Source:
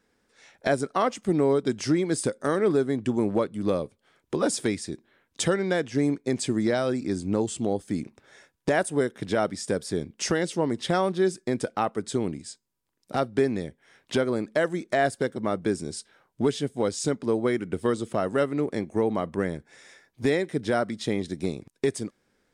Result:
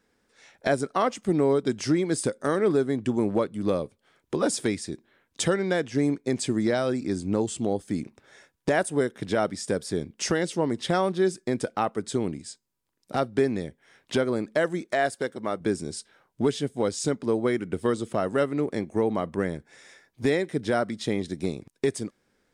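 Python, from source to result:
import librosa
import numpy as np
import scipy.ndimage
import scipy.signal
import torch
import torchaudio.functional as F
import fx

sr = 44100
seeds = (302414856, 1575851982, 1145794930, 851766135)

y = fx.low_shelf(x, sr, hz=260.0, db=-9.5, at=(14.85, 15.61))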